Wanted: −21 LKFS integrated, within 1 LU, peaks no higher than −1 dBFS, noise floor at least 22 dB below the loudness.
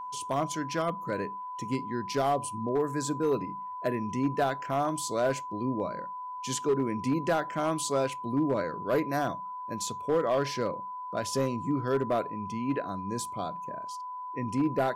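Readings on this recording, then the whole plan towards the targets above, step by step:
share of clipped samples 0.7%; peaks flattened at −20.0 dBFS; interfering tone 1,000 Hz; level of the tone −36 dBFS; integrated loudness −31.0 LKFS; sample peak −20.0 dBFS; target loudness −21.0 LKFS
→ clipped peaks rebuilt −20 dBFS
notch filter 1,000 Hz, Q 30
level +10 dB

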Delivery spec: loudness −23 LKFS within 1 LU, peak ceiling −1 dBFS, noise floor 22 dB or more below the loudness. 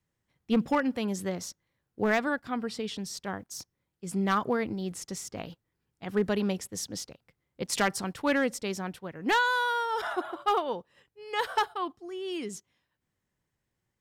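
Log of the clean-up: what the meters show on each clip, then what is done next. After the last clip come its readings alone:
share of clipped samples 0.3%; peaks flattened at −18.5 dBFS; integrated loudness −30.5 LKFS; sample peak −18.5 dBFS; target loudness −23.0 LKFS
→ clipped peaks rebuilt −18.5 dBFS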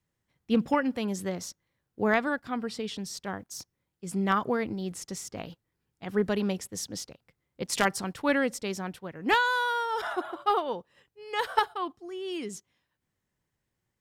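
share of clipped samples 0.0%; integrated loudness −30.0 LKFS; sample peak −9.5 dBFS; target loudness −23.0 LKFS
→ level +7 dB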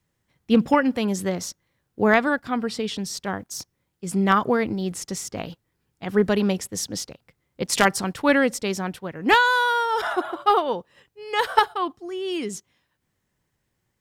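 integrated loudness −23.0 LKFS; sample peak −2.5 dBFS; background noise floor −76 dBFS

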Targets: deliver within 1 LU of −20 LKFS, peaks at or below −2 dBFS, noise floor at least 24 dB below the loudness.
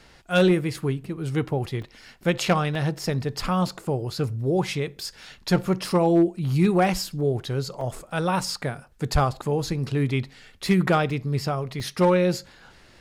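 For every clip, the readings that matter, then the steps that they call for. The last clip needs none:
share of clipped samples 0.3%; peaks flattened at −12.0 dBFS; number of dropouts 5; longest dropout 2.8 ms; integrated loudness −24.5 LKFS; sample peak −12.0 dBFS; target loudness −20.0 LKFS
→ clipped peaks rebuilt −12 dBFS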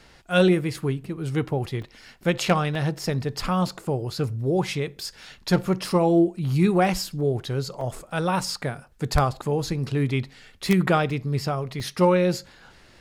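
share of clipped samples 0.0%; number of dropouts 5; longest dropout 2.8 ms
→ repair the gap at 0:01.82/0:02.75/0:07.81/0:11.10/0:11.80, 2.8 ms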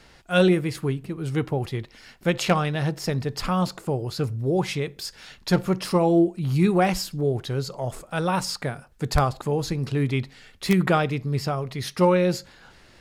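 number of dropouts 0; integrated loudness −24.5 LKFS; sample peak −3.0 dBFS; target loudness −20.0 LKFS
→ level +4.5 dB
brickwall limiter −2 dBFS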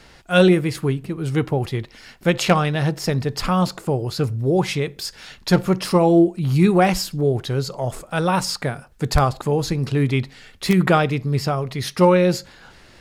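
integrated loudness −20.0 LKFS; sample peak −2.0 dBFS; background noise floor −49 dBFS

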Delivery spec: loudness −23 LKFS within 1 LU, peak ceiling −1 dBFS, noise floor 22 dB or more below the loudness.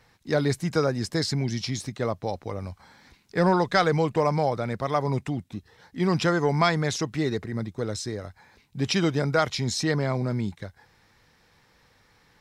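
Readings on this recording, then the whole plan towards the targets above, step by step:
integrated loudness −26.0 LKFS; sample peak −8.5 dBFS; target loudness −23.0 LKFS
→ level +3 dB

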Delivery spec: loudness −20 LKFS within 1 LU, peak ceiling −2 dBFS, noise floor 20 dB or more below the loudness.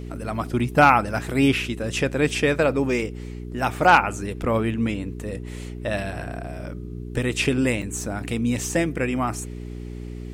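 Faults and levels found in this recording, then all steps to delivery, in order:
number of dropouts 1; longest dropout 4.8 ms; mains hum 60 Hz; hum harmonics up to 420 Hz; level of the hum −31 dBFS; integrated loudness −23.0 LKFS; sample peak −2.5 dBFS; target loudness −20.0 LKFS
→ repair the gap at 0:07.82, 4.8 ms
hum removal 60 Hz, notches 7
level +3 dB
brickwall limiter −2 dBFS

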